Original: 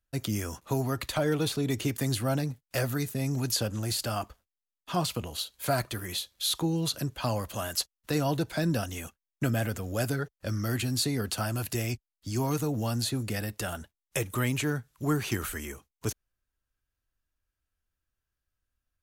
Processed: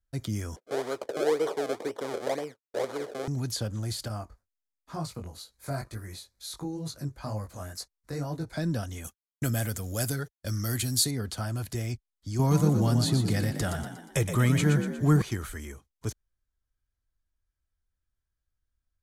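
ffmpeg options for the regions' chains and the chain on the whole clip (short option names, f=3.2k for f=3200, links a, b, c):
-filter_complex "[0:a]asettb=1/sr,asplit=3[a][b][c];[a]atrim=end=0.564[d];[b]atrim=start=0.56:end=3.28,asetpts=PTS-STARTPTS,afade=t=in:d=0.004:c=qsin,afade=t=out:st=2.716:d=0.004:c=qsin,acrusher=samples=32:mix=1:aa=0.000001:lfo=1:lforange=32:lforate=2,highpass=f=460:t=q:w=3.4,agate=range=-33dB:threshold=-48dB:ratio=3:release=100:detection=peak[e];[c]atrim=start=3.276[f];[d][e]acrossfade=d=0.004:c1=hsin:c2=qsin[g];[g][f]acrossfade=d=0.004:c1=qsin:c2=hsin,asettb=1/sr,asplit=3[h][i][j];[h]atrim=end=4.084[k];[i]atrim=start=4.08:end=8.53,asetpts=PTS-STARTPTS,afade=t=in:d=0.004:c=qsin,afade=t=out:st=4.446:d=0.004:c=qsin,equalizer=f=3.2k:t=o:w=0.36:g=-14,flanger=delay=18.5:depth=3.6:speed=2.1[l];[j]atrim=start=8.526[m];[k][l]acrossfade=d=0.004:c1=hsin:c2=qsin[n];[n][m]acrossfade=d=0.004:c1=qsin:c2=hsin,asettb=1/sr,asplit=3[o][p][q];[o]atrim=end=9.044[r];[p]atrim=start=9.04:end=11.11,asetpts=PTS-STARTPTS,afade=t=in:d=0.004:c=qsin,afade=t=out:st=2.066:d=0.004:c=qsin,aemphasis=mode=production:type=75kf,agate=range=-33dB:threshold=-40dB:ratio=3:release=100:detection=peak[s];[q]atrim=start=11.106[t];[r][s]acrossfade=d=0.004:c1=hsin:c2=qsin[u];[u][t]acrossfade=d=0.004:c1=qsin:c2=hsin,asettb=1/sr,asplit=3[v][w][x];[v]atrim=end=12.394[y];[w]atrim=start=12.39:end=15.22,asetpts=PTS-STARTPTS,afade=t=in:d=0.004:c=qsin,afade=t=out:st=2.826:d=0.004:c=qsin,acontrast=36,equalizer=f=160:t=o:w=0.44:g=5.5,asplit=7[z][aa][ab][ac][ad][ae][af];[aa]adelay=119,afreqshift=44,volume=-7.5dB[ag];[ab]adelay=238,afreqshift=88,volume=-13.9dB[ah];[ac]adelay=357,afreqshift=132,volume=-20.3dB[ai];[ad]adelay=476,afreqshift=176,volume=-26.6dB[aj];[ae]adelay=595,afreqshift=220,volume=-33dB[ak];[af]adelay=714,afreqshift=264,volume=-39.4dB[al];[z][ag][ah][ai][aj][ak][al]amix=inputs=7:normalize=0,atrim=end_sample=124803[am];[x]atrim=start=15.216[an];[y][am]acrossfade=d=0.004:c1=hsin:c2=qsin[ao];[ao][an]acrossfade=d=0.004:c1=qsin:c2=hsin,lowpass=11k,lowshelf=f=130:g=9,bandreject=f=2.7k:w=7.1,volume=-4.5dB"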